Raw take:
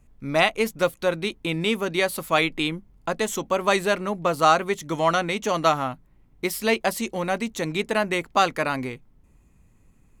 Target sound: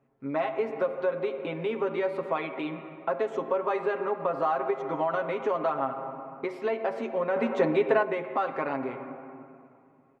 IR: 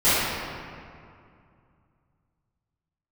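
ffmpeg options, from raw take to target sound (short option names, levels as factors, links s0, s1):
-filter_complex "[0:a]aecho=1:1:7.4:0.84,asoftclip=type=hard:threshold=0.447,alimiter=limit=0.251:level=0:latency=1:release=94,asplit=2[s0][s1];[1:a]atrim=start_sample=2205,highshelf=f=5000:g=-10[s2];[s1][s2]afir=irnorm=-1:irlink=0,volume=0.0376[s3];[s0][s3]amix=inputs=2:normalize=0,acompressor=threshold=0.0631:ratio=2.5,highpass=310,asettb=1/sr,asplit=3[s4][s5][s6];[s4]atrim=end=7.364[s7];[s5]atrim=start=7.36:end=8.03,asetpts=PTS-STARTPTS,afade=t=in:d=0.004:c=qsin,afade=t=out:st=0.666:d=0.004:c=qsin,acontrast=63[s8];[s6]atrim=start=8.026[s9];[s7][s8]acrossfade=d=0.004:c1=hsin:c2=qsin[s10];[s10][s9]acrossfade=d=0.004:c1=qsin:c2=hsin,lowpass=1300"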